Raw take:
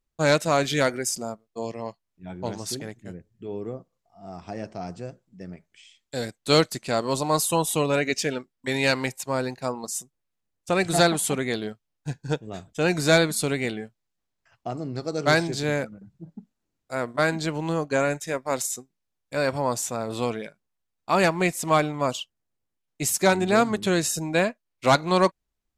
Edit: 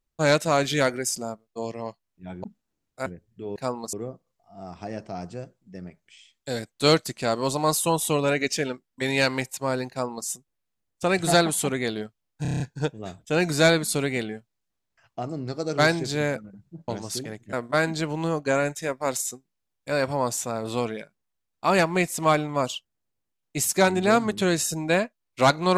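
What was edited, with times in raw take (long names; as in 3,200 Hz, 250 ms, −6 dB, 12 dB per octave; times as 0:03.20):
0:02.44–0:03.09: swap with 0:16.36–0:16.98
0:09.56–0:09.93: duplicate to 0:03.59
0:12.08: stutter 0.03 s, 7 plays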